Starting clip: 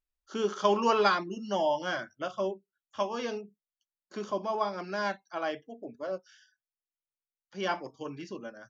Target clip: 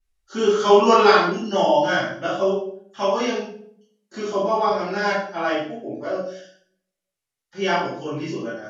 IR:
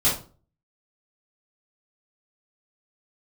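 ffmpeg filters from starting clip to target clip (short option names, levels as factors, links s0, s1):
-filter_complex "[0:a]asettb=1/sr,asplit=3[s0][s1][s2];[s0]atrim=end=2.274[s3];[s1]atrim=start=2.27:end=4.69,asetpts=PTS-STARTPTS,afade=t=in:d=0.004:c=qsin,afade=t=out:st=2.416:d=0.004:c=qsin,highpass=120[s4];[s2]atrim=start=4.686[s5];[s3][s4]acrossfade=d=0.004:c1=hsin:c2=qsin[s6];[s6][s5]acrossfade=d=0.004:c1=qsin:c2=hsin[s7];[1:a]atrim=start_sample=2205,asetrate=25578,aresample=44100[s8];[s7][s8]afir=irnorm=-1:irlink=0,volume=0.447"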